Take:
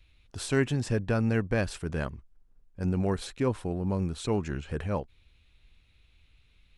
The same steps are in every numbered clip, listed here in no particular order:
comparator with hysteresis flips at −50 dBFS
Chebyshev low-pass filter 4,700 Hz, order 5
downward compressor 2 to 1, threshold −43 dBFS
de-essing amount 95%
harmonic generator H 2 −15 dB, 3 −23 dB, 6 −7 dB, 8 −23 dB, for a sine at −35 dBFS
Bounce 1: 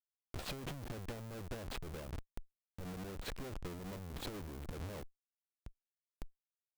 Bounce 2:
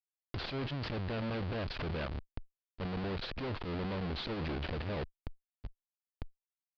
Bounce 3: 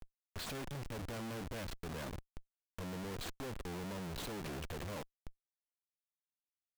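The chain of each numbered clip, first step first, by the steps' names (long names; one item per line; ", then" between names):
downward compressor, then Chebyshev low-pass filter, then comparator with hysteresis, then de-essing, then harmonic generator
de-essing, then comparator with hysteresis, then downward compressor, then harmonic generator, then Chebyshev low-pass filter
downward compressor, then Chebyshev low-pass filter, then de-essing, then harmonic generator, then comparator with hysteresis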